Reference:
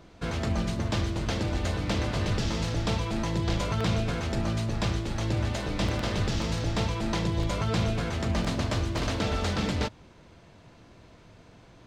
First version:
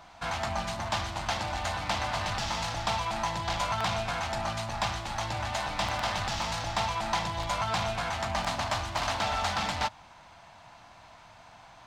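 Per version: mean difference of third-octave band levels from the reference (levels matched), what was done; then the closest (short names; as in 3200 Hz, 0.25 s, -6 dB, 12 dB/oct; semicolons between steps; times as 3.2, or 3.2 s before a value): 6.5 dB: in parallel at -5 dB: soft clip -34.5 dBFS, distortion -7 dB; on the sum: resonant low shelf 580 Hz -10.5 dB, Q 3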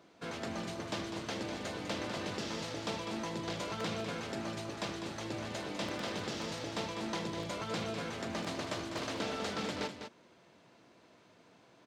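4.0 dB: HPF 230 Hz 12 dB/oct; on a send: echo 0.2 s -8 dB; on the sum: gain -6.5 dB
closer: second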